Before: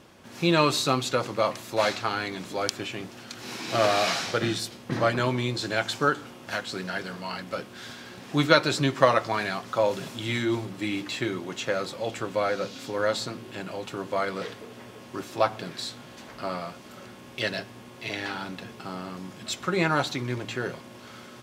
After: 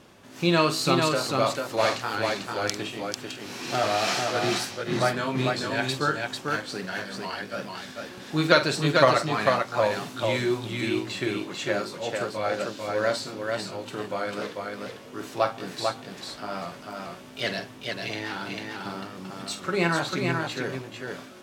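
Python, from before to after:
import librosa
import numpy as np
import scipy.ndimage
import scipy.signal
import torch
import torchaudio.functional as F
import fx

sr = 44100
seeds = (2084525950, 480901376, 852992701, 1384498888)

y = fx.pitch_ramps(x, sr, semitones=1.5, every_ms=426)
y = fx.echo_multitap(y, sr, ms=(47, 445), db=(-10.5, -3.5))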